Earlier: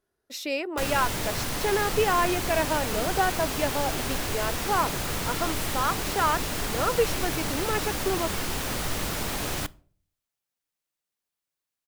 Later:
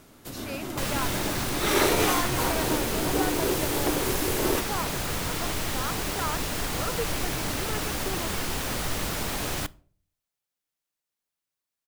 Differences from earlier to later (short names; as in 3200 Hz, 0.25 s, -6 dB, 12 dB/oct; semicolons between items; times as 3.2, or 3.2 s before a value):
speech -8.5 dB; first sound: unmuted